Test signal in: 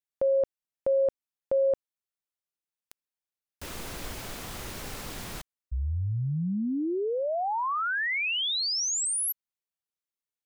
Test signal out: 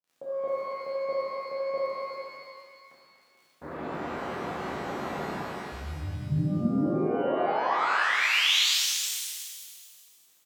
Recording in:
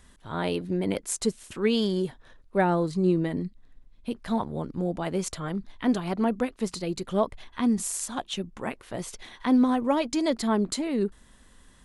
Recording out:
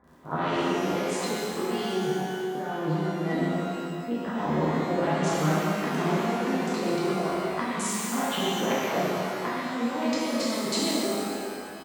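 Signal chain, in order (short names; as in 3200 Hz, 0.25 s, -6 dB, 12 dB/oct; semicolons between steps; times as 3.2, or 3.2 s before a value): Wiener smoothing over 15 samples; low-pass opened by the level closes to 1200 Hz, open at -19.5 dBFS; low shelf 170 Hz -7.5 dB; doubler 38 ms -11.5 dB; crackle 33/s -54 dBFS; negative-ratio compressor -34 dBFS, ratio -1; HPF 130 Hz 12 dB/oct; delay with a stepping band-pass 0.121 s, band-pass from 2600 Hz, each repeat -1.4 oct, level -2 dB; shimmer reverb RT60 2 s, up +12 st, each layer -8 dB, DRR -7.5 dB; gain -1.5 dB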